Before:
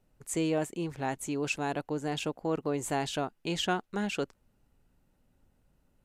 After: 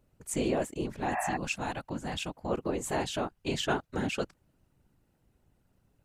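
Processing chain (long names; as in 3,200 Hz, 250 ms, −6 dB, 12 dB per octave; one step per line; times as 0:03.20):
random phases in short frames
0:01.18–0:02.49: parametric band 410 Hz −11 dB 0.79 octaves
0:01.14–0:01.34: healed spectral selection 560–2,700 Hz before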